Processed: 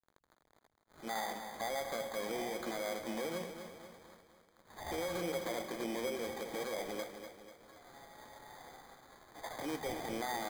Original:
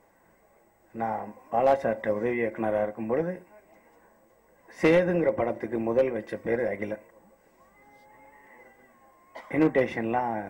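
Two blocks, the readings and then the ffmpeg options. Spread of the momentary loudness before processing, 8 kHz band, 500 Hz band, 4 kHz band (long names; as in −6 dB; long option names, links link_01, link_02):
12 LU, can't be measured, −13.5 dB, +3.5 dB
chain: -filter_complex "[0:a]afftfilt=real='re*between(b*sr/4096,120,3600)':imag='im*between(b*sr/4096,120,3600)':win_size=4096:overlap=0.75,tiltshelf=frequency=970:gain=-6.5,acompressor=threshold=-28dB:ratio=6,alimiter=level_in=4.5dB:limit=-24dB:level=0:latency=1:release=36,volume=-4.5dB,acrusher=bits=8:mix=0:aa=0.000001,acrossover=split=160|2200[link_01][link_02][link_03];[link_02]adelay=80[link_04];[link_01]adelay=170[link_05];[link_05][link_04][link_03]amix=inputs=3:normalize=0,acrusher=samples=16:mix=1:aa=0.000001,asplit=2[link_06][link_07];[link_07]aecho=0:1:245|490|735|980|1225|1470:0.355|0.174|0.0852|0.0417|0.0205|0.01[link_08];[link_06][link_08]amix=inputs=2:normalize=0,volume=-1dB"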